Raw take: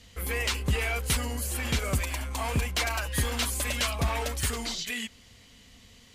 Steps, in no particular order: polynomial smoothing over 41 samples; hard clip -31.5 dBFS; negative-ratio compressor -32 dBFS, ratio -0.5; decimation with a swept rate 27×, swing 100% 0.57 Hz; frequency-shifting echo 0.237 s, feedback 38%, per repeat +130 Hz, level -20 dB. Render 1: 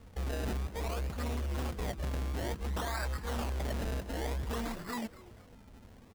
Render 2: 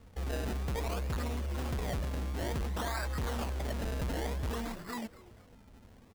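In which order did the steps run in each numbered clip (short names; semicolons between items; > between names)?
polynomial smoothing > negative-ratio compressor > decimation with a swept rate > frequency-shifting echo > hard clip; polynomial smoothing > decimation with a swept rate > frequency-shifting echo > hard clip > negative-ratio compressor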